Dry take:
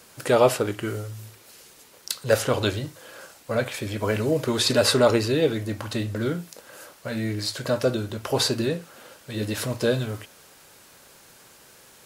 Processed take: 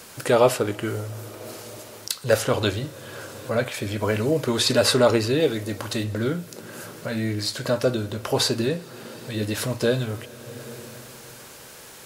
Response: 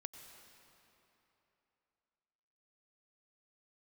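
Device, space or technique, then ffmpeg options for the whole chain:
ducked reverb: -filter_complex "[0:a]asettb=1/sr,asplit=3[a][b][c];[a]atrim=end=5.404[d];[b]atrim=start=5.4:end=6.04,asetpts=PTS-STARTPTS,afade=t=in:d=0.004:c=qsin,afade=t=out:st=0.636:d=0.004:c=qsin,bass=f=250:g=-3,treble=f=4k:g=4[e];[c]atrim=start=6.036[f];[d][e]acrossfade=d=0.004:c1=hsin:c2=qsin[g];[g][f]acrossfade=d=0.004:c1=qsin:c2=hsin,asplit=3[h][i][j];[1:a]atrim=start_sample=2205[k];[i][k]afir=irnorm=-1:irlink=0[l];[j]apad=whole_len=531707[m];[l][m]sidechaincompress=threshold=-45dB:ratio=4:attack=16:release=402,volume=7.5dB[n];[h][n]amix=inputs=2:normalize=0"

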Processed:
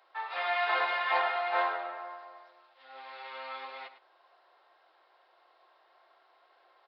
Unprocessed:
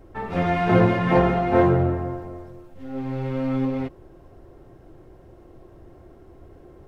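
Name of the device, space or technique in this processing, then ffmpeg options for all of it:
musical greeting card: -af "aresample=11025,aresample=44100,highpass=f=830:w=0.5412,highpass=f=830:w=1.3066,equalizer=f=3.9k:t=o:w=0.51:g=7,aecho=1:1:104:0.224,volume=-2dB"

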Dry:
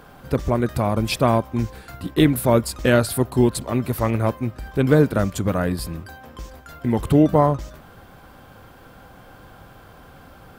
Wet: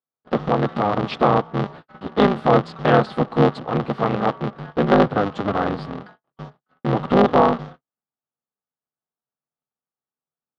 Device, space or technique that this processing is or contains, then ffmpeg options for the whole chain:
ring modulator pedal into a guitar cabinet: -af "agate=range=-54dB:threshold=-36dB:ratio=16:detection=peak,aeval=exprs='val(0)*sgn(sin(2*PI*100*n/s))':c=same,highpass=99,equalizer=f=140:t=q:w=4:g=8,equalizer=f=250:t=q:w=4:g=5,equalizer=f=490:t=q:w=4:g=6,equalizer=f=770:t=q:w=4:g=7,equalizer=f=1.2k:t=q:w=4:g=8,equalizer=f=2.4k:t=q:w=4:g=-6,lowpass=f=3.4k:w=0.5412,lowpass=f=3.4k:w=1.3066,highshelf=f=3.7k:g=8,volume=-3.5dB"

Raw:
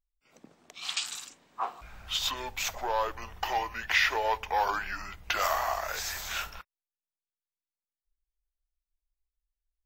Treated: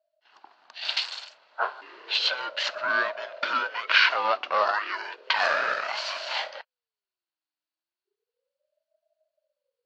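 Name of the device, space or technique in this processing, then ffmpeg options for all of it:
voice changer toy: -af "aeval=exprs='val(0)*sin(2*PI*470*n/s+470*0.35/0.33*sin(2*PI*0.33*n/s))':c=same,highpass=580,equalizer=f=630:t=q:w=4:g=8,equalizer=f=970:t=q:w=4:g=7,equalizer=f=1.5k:t=q:w=4:g=7,equalizer=f=2.8k:t=q:w=4:g=6,equalizer=f=4.4k:t=q:w=4:g=10,lowpass=f=4.8k:w=0.5412,lowpass=f=4.8k:w=1.3066,volume=3.5dB"

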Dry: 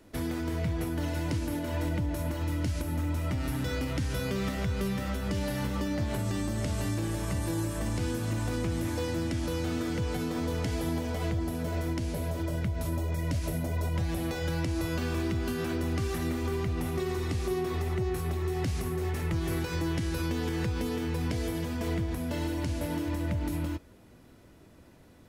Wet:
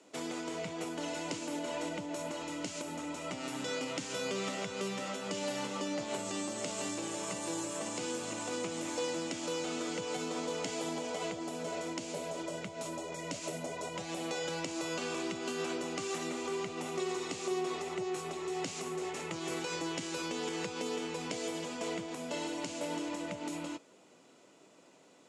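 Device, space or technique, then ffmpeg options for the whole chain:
television speaker: -af "highpass=f=220:w=0.5412,highpass=f=220:w=1.3066,equalizer=f=230:t=q:w=4:g=-9,equalizer=f=330:t=q:w=4:g=-5,equalizer=f=1.7k:t=q:w=4:g=-7,equalizer=f=2.8k:t=q:w=4:g=3,equalizer=f=7.1k:t=q:w=4:g=9,lowpass=f=8.8k:w=0.5412,lowpass=f=8.8k:w=1.3066"

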